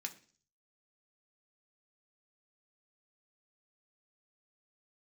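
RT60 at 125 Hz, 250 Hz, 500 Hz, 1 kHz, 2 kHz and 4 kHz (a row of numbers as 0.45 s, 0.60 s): 0.70 s, 0.55 s, 0.45 s, 0.40 s, 0.45 s, 0.55 s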